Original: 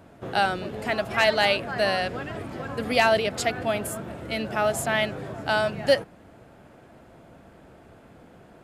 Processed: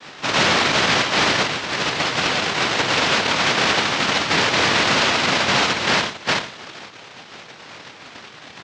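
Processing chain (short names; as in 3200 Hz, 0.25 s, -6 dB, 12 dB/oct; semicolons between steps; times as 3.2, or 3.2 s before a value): random spectral dropouts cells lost 28%; reverb RT60 0.40 s, pre-delay 3 ms, DRR -3.5 dB; noise vocoder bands 1; Gaussian blur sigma 2 samples; echo 0.375 s -12 dB; 1.31–3.58 compressor 12:1, threshold -33 dBFS, peak gain reduction 14.5 dB; random-step tremolo; maximiser +27.5 dB; gain -7 dB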